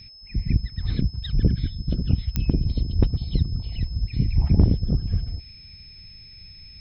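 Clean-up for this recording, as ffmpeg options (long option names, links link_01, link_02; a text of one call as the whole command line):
ffmpeg -i in.wav -af "adeclick=threshold=4,bandreject=frequency=5200:width=30" out.wav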